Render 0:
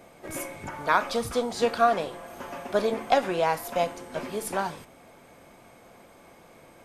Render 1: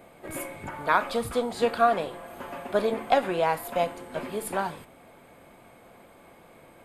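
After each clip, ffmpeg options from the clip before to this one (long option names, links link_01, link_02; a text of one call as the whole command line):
ffmpeg -i in.wav -af "equalizer=frequency=5800:width_type=o:width=0.45:gain=-12.5" out.wav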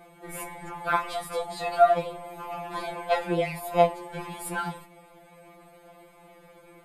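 ffmpeg -i in.wav -af "afftfilt=real='re*2.83*eq(mod(b,8),0)':imag='im*2.83*eq(mod(b,8),0)':win_size=2048:overlap=0.75,volume=1.5dB" out.wav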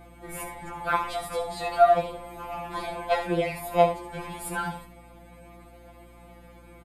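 ffmpeg -i in.wav -af "aeval=exprs='val(0)+0.00282*(sin(2*PI*60*n/s)+sin(2*PI*2*60*n/s)/2+sin(2*PI*3*60*n/s)/3+sin(2*PI*4*60*n/s)/4+sin(2*PI*5*60*n/s)/5)':channel_layout=same,aecho=1:1:71:0.335" out.wav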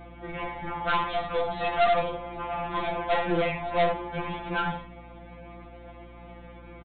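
ffmpeg -i in.wav -af "aeval=exprs='0.501*(cos(1*acos(clip(val(0)/0.501,-1,1)))-cos(1*PI/2))+0.141*(cos(6*acos(clip(val(0)/0.501,-1,1)))-cos(6*PI/2))+0.158*(cos(8*acos(clip(val(0)/0.501,-1,1)))-cos(8*PI/2))':channel_layout=same,aresample=8000,asoftclip=type=tanh:threshold=-22dB,aresample=44100,volume=4dB" out.wav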